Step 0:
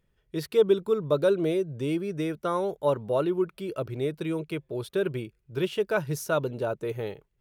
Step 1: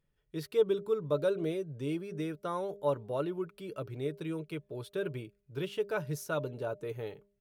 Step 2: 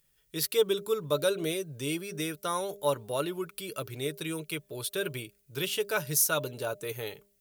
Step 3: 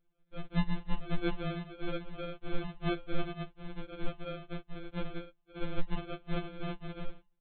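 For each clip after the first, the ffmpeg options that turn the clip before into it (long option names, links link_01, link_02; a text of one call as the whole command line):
ffmpeg -i in.wav -af "aecho=1:1:6.9:0.3,bandreject=frequency=201.6:width_type=h:width=4,bandreject=frequency=403.2:width_type=h:width=4,bandreject=frequency=604.8:width_type=h:width=4,volume=-7.5dB" out.wav
ffmpeg -i in.wav -af "crystalizer=i=9:c=0" out.wav
ffmpeg -i in.wav -af "aresample=8000,acrusher=samples=38:mix=1:aa=0.000001,aresample=44100,afftfilt=real='re*2.83*eq(mod(b,8),0)':imag='im*2.83*eq(mod(b,8),0)':win_size=2048:overlap=0.75,volume=3.5dB" out.wav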